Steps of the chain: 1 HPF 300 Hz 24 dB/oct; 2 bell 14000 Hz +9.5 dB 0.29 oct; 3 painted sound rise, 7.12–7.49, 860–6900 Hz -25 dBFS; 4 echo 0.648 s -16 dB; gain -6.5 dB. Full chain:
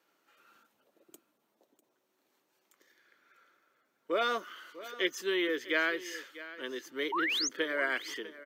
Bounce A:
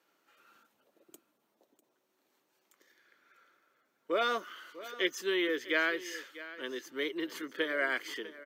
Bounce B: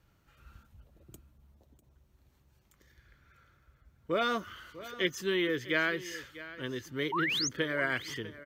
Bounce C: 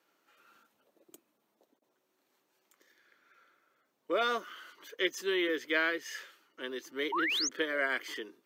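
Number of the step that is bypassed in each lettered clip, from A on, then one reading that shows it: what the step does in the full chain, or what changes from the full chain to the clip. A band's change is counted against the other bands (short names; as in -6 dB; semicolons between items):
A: 3, 8 kHz band -6.0 dB; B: 1, 250 Hz band +2.5 dB; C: 4, momentary loudness spread change +2 LU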